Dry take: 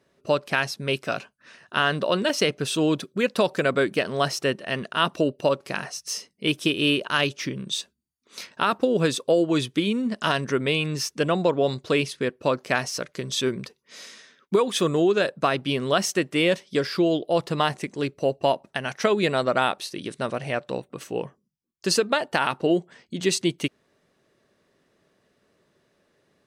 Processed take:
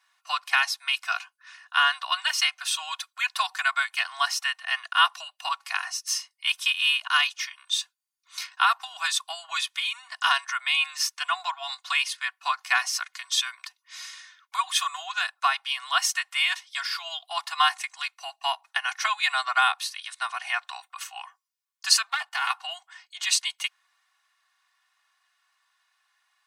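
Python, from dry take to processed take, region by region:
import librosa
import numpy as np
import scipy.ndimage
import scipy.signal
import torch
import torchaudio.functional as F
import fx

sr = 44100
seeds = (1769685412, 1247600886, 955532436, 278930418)

y = fx.chain(x, sr, fx.halfwave_gain(db=-7.0),
    fx.level_steps(step_db=10), at=(22.09, 22.5))
y = scipy.signal.sosfilt(scipy.signal.butter(12, 820.0, 'highpass', fs=sr, output='sos'), y)
y = y + 0.88 * np.pad(y, (int(2.8 * sr / 1000.0), 0))[:len(y)]
y = fx.rider(y, sr, range_db=3, speed_s=2.0)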